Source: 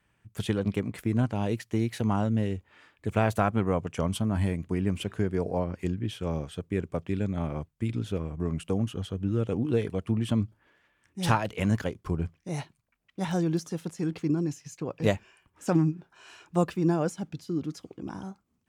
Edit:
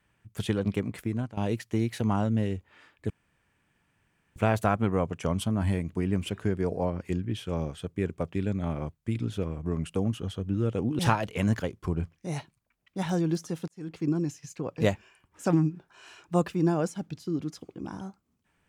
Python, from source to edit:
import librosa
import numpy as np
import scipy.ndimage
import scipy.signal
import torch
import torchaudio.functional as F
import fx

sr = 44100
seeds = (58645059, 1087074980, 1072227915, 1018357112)

y = fx.edit(x, sr, fx.fade_out_to(start_s=0.94, length_s=0.43, floor_db=-15.0),
    fx.insert_room_tone(at_s=3.1, length_s=1.26),
    fx.cut(start_s=9.73, length_s=1.48),
    fx.fade_in_span(start_s=13.9, length_s=0.44), tone=tone)